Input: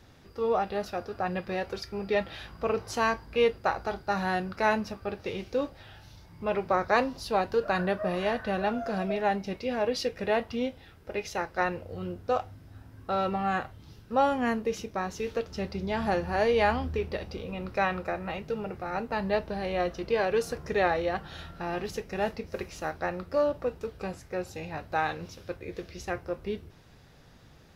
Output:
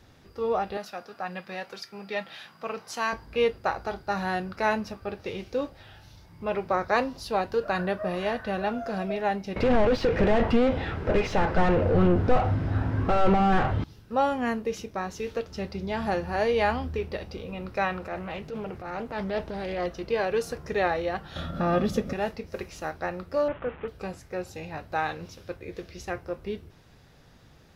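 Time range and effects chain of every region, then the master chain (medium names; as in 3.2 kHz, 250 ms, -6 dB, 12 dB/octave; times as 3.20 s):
0.77–3.13 s: high-pass 170 Hz 24 dB/octave + peaking EQ 350 Hz -9.5 dB 1.6 oct
9.56–13.84 s: compression 1.5:1, threshold -35 dBFS + overdrive pedal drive 33 dB, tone 2.2 kHz, clips at -17.5 dBFS + RIAA curve playback
17.98–19.86 s: transient shaper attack -8 dB, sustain +3 dB + loudspeaker Doppler distortion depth 0.29 ms
21.36–22.13 s: peaking EQ 71 Hz +6 dB 2.4 oct + upward compressor, threshold -33 dBFS + small resonant body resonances 230/560/1200/3400 Hz, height 14 dB, ringing for 25 ms
23.48–23.88 s: one-bit delta coder 16 kbps, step -41.5 dBFS + peaking EQ 1.4 kHz +6 dB 1.4 oct
whole clip: none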